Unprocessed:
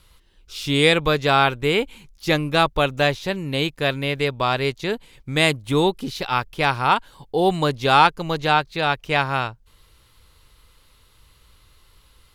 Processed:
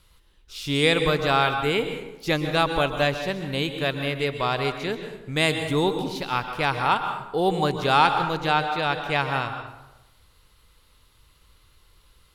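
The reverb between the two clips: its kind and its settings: plate-style reverb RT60 0.96 s, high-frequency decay 0.6×, pre-delay 0.11 s, DRR 7 dB; gain -4 dB

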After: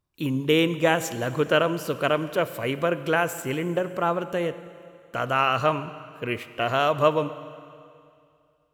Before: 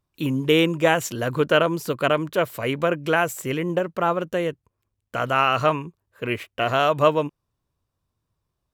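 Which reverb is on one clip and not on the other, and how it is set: Schroeder reverb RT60 2.4 s, combs from 31 ms, DRR 13 dB; gain -2.5 dB

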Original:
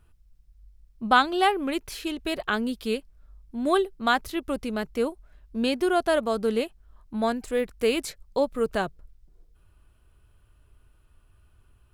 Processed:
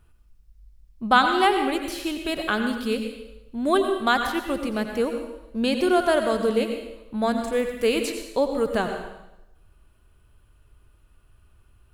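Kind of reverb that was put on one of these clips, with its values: plate-style reverb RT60 0.89 s, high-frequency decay 0.95×, pre-delay 75 ms, DRR 5 dB; gain +1.5 dB

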